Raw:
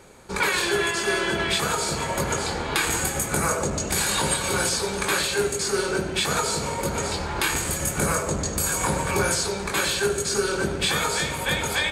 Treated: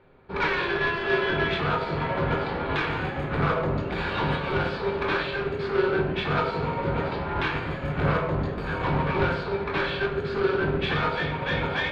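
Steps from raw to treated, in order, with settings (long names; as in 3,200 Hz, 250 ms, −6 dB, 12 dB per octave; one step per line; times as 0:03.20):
high-frequency loss of the air 460 metres
soft clipping −24.5 dBFS, distortion −13 dB
high shelf with overshoot 5,700 Hz −13.5 dB, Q 1.5
rectangular room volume 48 cubic metres, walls mixed, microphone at 0.47 metres
expander for the loud parts 1.5 to 1, over −46 dBFS
level +4 dB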